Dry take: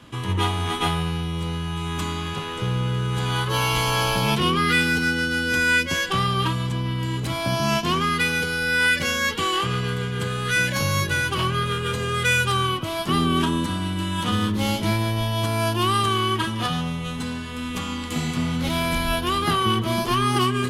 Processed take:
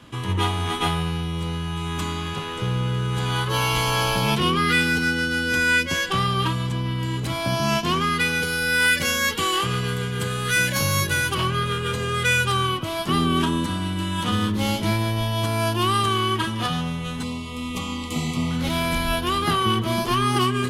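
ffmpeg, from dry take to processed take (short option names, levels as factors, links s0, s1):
-filter_complex "[0:a]asettb=1/sr,asplit=3[s0][s1][s2];[s0]atrim=end=8.434[s3];[s1]atrim=start=8.43:end=11.35,asetpts=PTS-STARTPTS,afade=t=in:d=0.004:c=qsin,afade=t=out:st=2.916:d=0.004:c=qsin,highshelf=f=8100:g=9.5[s4];[s2]atrim=start=11.346[s5];[s3][s4]acrossfade=d=0.004:c1=hsin:c2=qsin[s6];[s6][s5]acrossfade=d=0.004:c1=qsin:c2=hsin,asettb=1/sr,asplit=3[s7][s8][s9];[s7]atrim=end=17.234[s10];[s8]atrim=start=17.23:end=18.51,asetpts=PTS-STARTPTS,afade=t=in:d=0.004:c=qsin,afade=t=out:st=1.276:d=0.004:c=qsin,asuperstop=centerf=1600:order=8:qfactor=2.5[s11];[s9]atrim=start=18.506[s12];[s10][s11]acrossfade=d=0.004:c1=hsin:c2=qsin[s13];[s13][s12]acrossfade=d=0.004:c1=qsin:c2=hsin"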